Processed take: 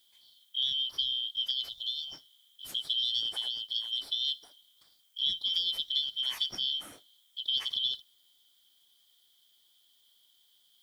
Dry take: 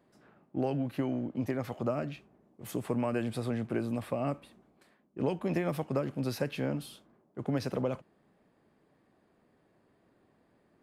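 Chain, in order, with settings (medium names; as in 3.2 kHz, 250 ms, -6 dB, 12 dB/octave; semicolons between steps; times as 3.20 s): four frequency bands reordered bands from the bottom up 3412; 1.69–2.13 s: static phaser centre 790 Hz, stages 4; 3.48–3.93 s: harmonic-percussive split harmonic -5 dB; added noise blue -71 dBFS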